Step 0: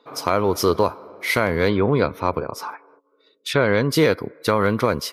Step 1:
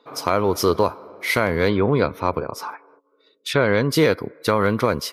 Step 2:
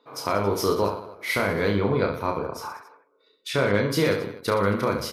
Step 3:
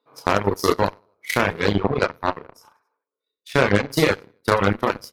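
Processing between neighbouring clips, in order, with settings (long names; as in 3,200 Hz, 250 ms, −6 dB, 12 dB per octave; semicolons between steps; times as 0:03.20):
no processing that can be heard
reverse bouncing-ball delay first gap 30 ms, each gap 1.3×, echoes 5; level −6 dB
harmonic generator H 7 −18 dB, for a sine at −7.5 dBFS; reverb reduction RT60 1.9 s; level +7 dB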